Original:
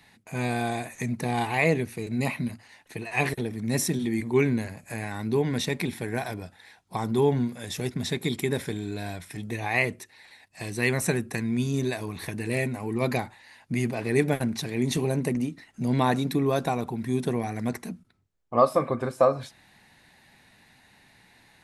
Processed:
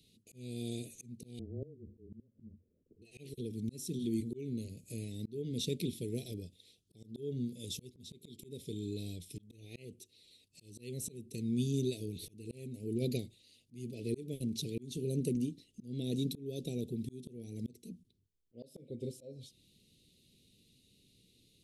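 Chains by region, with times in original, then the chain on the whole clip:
1.39–3.02 s: frequency shift -20 Hz + steep low-pass 640 Hz + inverted gate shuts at -19 dBFS, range -24 dB
whole clip: elliptic band-stop 450–3100 Hz, stop band 50 dB; slow attack 416 ms; trim -5.5 dB

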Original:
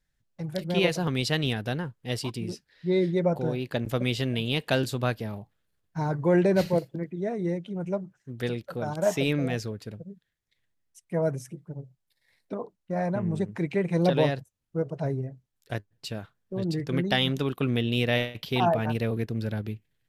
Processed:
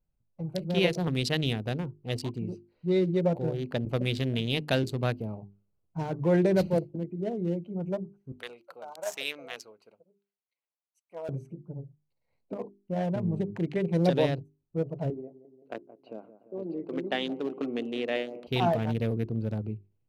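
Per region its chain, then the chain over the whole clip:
8.32–11.29 s: high-pass 960 Hz + treble shelf 7 kHz +6.5 dB
15.10–18.47 s: high-pass 260 Hz 24 dB/octave + distance through air 350 m + feedback echo behind a low-pass 173 ms, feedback 64%, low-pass 1.6 kHz, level -14 dB
whole clip: local Wiener filter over 25 samples; hum notches 50/100/150/200/250/300/350/400 Hz; dynamic bell 1.1 kHz, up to -4 dB, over -39 dBFS, Q 1

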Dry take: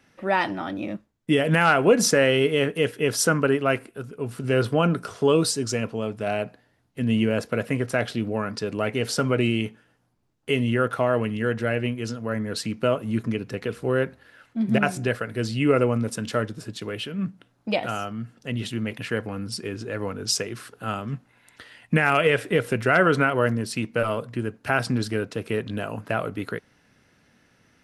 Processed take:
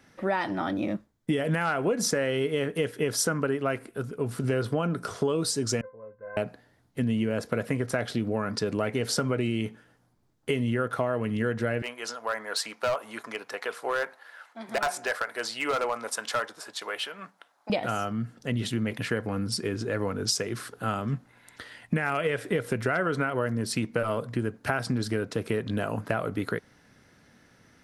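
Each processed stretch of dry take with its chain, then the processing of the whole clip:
5.81–6.37 s: elliptic low-pass 1.9 kHz + feedback comb 520 Hz, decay 0.18 s, mix 100%
11.82–17.70 s: resonant high-pass 830 Hz, resonance Q 1.8 + overload inside the chain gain 21.5 dB
whole clip: peaking EQ 2.7 kHz -5.5 dB 0.36 oct; compression, threshold -26 dBFS; trim +2.5 dB

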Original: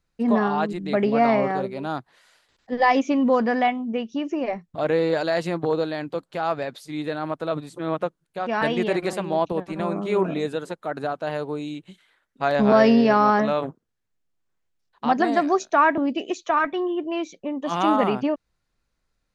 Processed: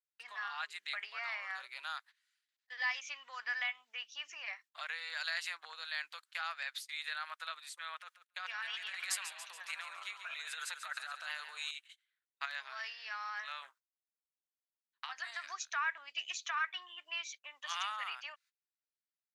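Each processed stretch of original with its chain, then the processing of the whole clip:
8.00–11.71 s: tone controls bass -4 dB, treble 0 dB + compressor with a negative ratio -31 dBFS + feedback delay 141 ms, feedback 56%, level -10 dB
12.45–15.44 s: doubling 18 ms -13.5 dB + compression 10:1, threshold -25 dBFS
whole clip: gate -42 dBFS, range -23 dB; compression 4:1, threshold -25 dBFS; high-pass 1.5 kHz 24 dB/octave; trim +1 dB

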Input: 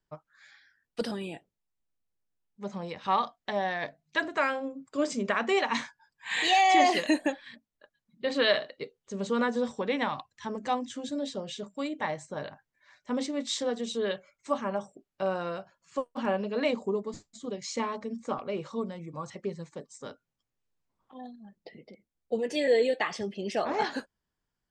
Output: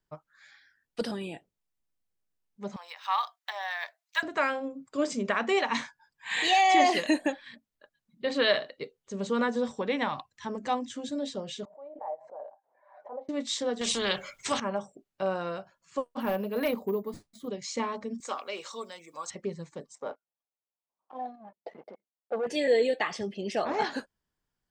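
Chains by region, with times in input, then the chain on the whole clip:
2.76–4.23 s: median filter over 3 samples + high-pass 870 Hz 24 dB/octave + treble shelf 8.2 kHz +9.5 dB
11.65–13.29 s: transient shaper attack -11 dB, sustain -4 dB + Butterworth band-pass 690 Hz, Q 2.1 + swell ahead of each attack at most 81 dB/s
13.81–14.60 s: peaking EQ 3.3 kHz +5 dB 0.33 oct + spectrum-flattening compressor 2:1
16.20–17.48 s: treble shelf 4.9 kHz -7.5 dB + overload inside the chain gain 22 dB + careless resampling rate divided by 3×, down filtered, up hold
18.20–19.31 s: high-pass 290 Hz + tilt EQ +4.5 dB/octave
19.95–22.47 s: waveshaping leveller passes 3 + band-pass filter 760 Hz, Q 1.8
whole clip: none

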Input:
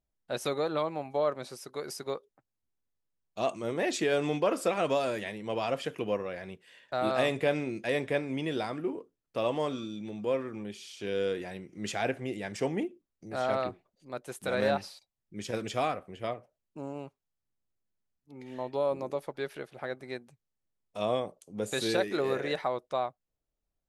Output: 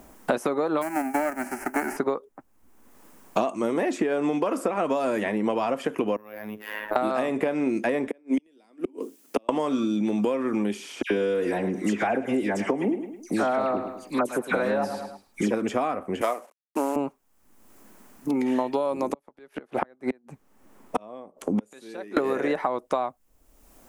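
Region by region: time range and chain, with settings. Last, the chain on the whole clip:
0.81–1.96 s: formants flattened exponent 0.3 + static phaser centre 720 Hz, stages 8
6.16–6.96 s: compression 12:1, threshold -49 dBFS + robot voice 106 Hz + careless resampling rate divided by 3×, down filtered, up hold
8.07–9.49 s: high-pass 220 Hz 24 dB/octave + inverted gate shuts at -26 dBFS, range -41 dB + peaking EQ 1.1 kHz -9 dB 1.8 oct
11.02–15.51 s: phase dispersion lows, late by 86 ms, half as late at 2 kHz + feedback delay 106 ms, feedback 29%, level -14.5 dB
16.21–16.96 s: CVSD coder 64 kbps + high-pass 310 Hz + tilt EQ +3 dB/octave
19.13–22.17 s: treble shelf 3.5 kHz -9 dB + inverted gate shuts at -32 dBFS, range -37 dB
whole clip: compression, threshold -33 dBFS; graphic EQ 125/250/1000/4000 Hz -10/+9/+6/-9 dB; three bands compressed up and down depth 100%; trim +8.5 dB

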